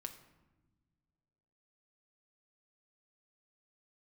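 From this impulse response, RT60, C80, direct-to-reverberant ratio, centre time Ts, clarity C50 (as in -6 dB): not exponential, 13.5 dB, 5.5 dB, 12 ms, 11.5 dB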